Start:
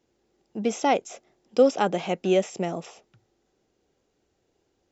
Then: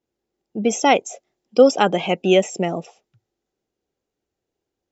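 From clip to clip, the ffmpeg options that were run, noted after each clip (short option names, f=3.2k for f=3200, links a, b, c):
-af "afftdn=nr=16:nf=-39,adynamicequalizer=threshold=0.0126:dfrequency=1900:dqfactor=0.7:tfrequency=1900:tqfactor=0.7:attack=5:release=100:ratio=0.375:range=3.5:mode=boostabove:tftype=highshelf,volume=6dB"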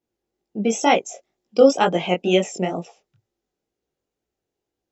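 -af "flanger=delay=16.5:depth=5.8:speed=2.1,volume=1.5dB"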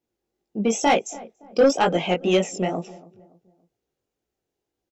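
-filter_complex "[0:a]asoftclip=type=tanh:threshold=-9.5dB,asplit=2[a][b];[b]adelay=284,lowpass=f=920:p=1,volume=-19dB,asplit=2[c][d];[d]adelay=284,lowpass=f=920:p=1,volume=0.43,asplit=2[e][f];[f]adelay=284,lowpass=f=920:p=1,volume=0.43[g];[a][c][e][g]amix=inputs=4:normalize=0"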